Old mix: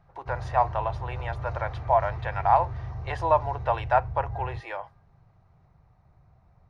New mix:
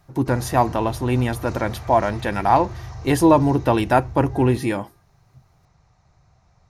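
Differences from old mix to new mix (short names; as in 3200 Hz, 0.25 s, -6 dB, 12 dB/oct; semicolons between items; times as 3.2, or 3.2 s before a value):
speech: remove inverse Chebyshev high-pass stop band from 240 Hz, stop band 50 dB; master: remove tape spacing loss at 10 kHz 35 dB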